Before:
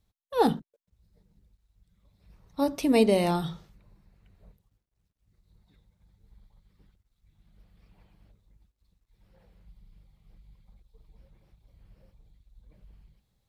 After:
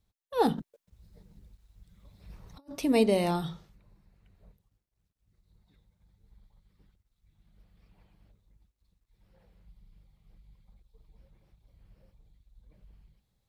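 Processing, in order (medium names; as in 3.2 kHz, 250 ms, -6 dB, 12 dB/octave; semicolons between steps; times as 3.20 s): 0.58–2.71 s: compressor with a negative ratio -39 dBFS, ratio -0.5; trim -2.5 dB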